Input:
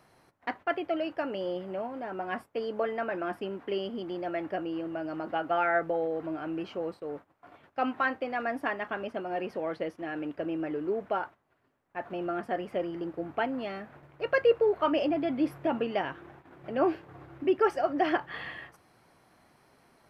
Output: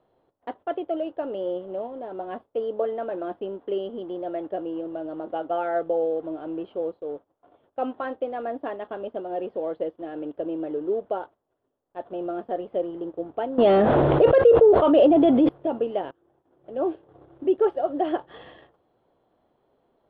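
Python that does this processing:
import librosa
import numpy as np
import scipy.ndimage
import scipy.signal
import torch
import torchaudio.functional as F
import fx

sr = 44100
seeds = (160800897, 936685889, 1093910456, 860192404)

y = fx.env_flatten(x, sr, amount_pct=100, at=(13.58, 15.49))
y = fx.edit(y, sr, fx.fade_in_from(start_s=16.11, length_s=1.13, floor_db=-17.0), tone=tone)
y = fx.low_shelf(y, sr, hz=66.0, db=9.5)
y = fx.leveller(y, sr, passes=1)
y = fx.curve_eq(y, sr, hz=(160.0, 490.0, 2300.0, 3400.0, 5700.0), db=(0, 12, -9, 4, -26))
y = y * 10.0 ** (-9.0 / 20.0)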